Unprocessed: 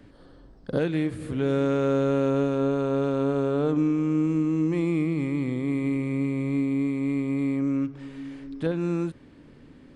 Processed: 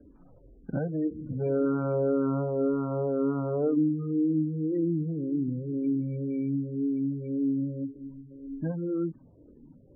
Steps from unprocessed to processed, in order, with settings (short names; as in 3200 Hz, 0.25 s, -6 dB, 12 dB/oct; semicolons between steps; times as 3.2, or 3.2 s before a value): median filter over 25 samples; spectral gate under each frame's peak -25 dB strong; endless phaser -1.9 Hz